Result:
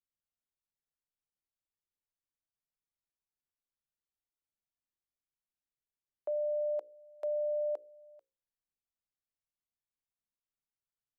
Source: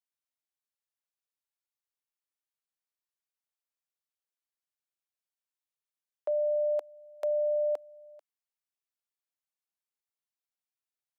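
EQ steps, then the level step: tilt -2 dB/oct; low shelf 310 Hz +8 dB; notches 60/120/180/240/300/360/420/480/540 Hz; -8.0 dB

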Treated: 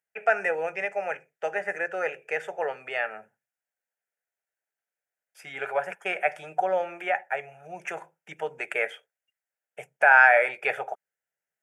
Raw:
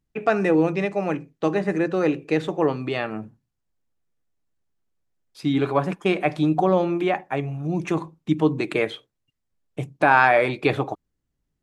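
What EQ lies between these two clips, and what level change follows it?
HPF 600 Hz 12 dB/oct; bell 1500 Hz +6 dB 0.65 oct; fixed phaser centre 1100 Hz, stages 6; 0.0 dB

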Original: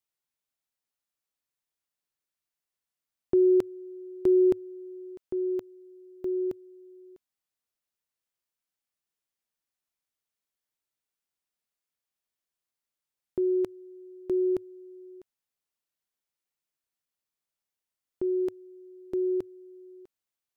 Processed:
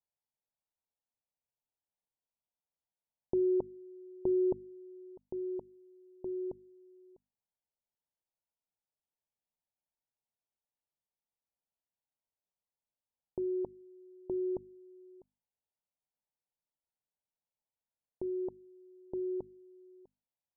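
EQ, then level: elliptic low-pass 940 Hz; bell 340 Hz -9.5 dB 0.68 oct; notches 50/100/150/200/250 Hz; 0.0 dB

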